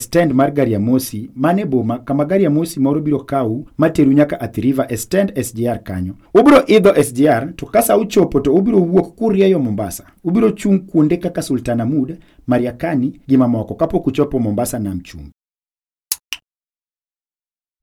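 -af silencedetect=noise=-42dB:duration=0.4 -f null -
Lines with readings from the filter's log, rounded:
silence_start: 15.30
silence_end: 16.11 | silence_duration: 0.81
silence_start: 16.39
silence_end: 17.83 | silence_duration: 1.44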